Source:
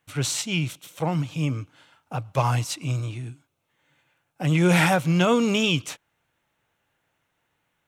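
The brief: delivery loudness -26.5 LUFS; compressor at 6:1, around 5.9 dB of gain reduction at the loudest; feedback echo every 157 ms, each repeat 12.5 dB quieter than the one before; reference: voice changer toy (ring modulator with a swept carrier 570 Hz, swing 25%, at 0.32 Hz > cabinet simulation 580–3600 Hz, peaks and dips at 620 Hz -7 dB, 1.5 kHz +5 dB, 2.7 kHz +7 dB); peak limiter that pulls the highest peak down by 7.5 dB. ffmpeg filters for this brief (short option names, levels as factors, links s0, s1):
-af "acompressor=threshold=0.0891:ratio=6,alimiter=limit=0.0944:level=0:latency=1,aecho=1:1:157|314|471:0.237|0.0569|0.0137,aeval=exprs='val(0)*sin(2*PI*570*n/s+570*0.25/0.32*sin(2*PI*0.32*n/s))':c=same,highpass=580,equalizer=f=620:t=q:w=4:g=-7,equalizer=f=1500:t=q:w=4:g=5,equalizer=f=2700:t=q:w=4:g=7,lowpass=f=3600:w=0.5412,lowpass=f=3600:w=1.3066,volume=2.99"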